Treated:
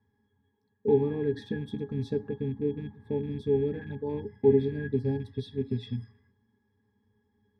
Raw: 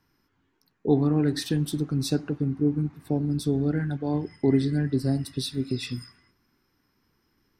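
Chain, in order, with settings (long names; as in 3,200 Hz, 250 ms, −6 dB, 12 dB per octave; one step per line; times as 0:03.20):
loose part that buzzes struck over −26 dBFS, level −32 dBFS
resonances in every octave G#, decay 0.11 s
hum removal 52.69 Hz, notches 3
level +8 dB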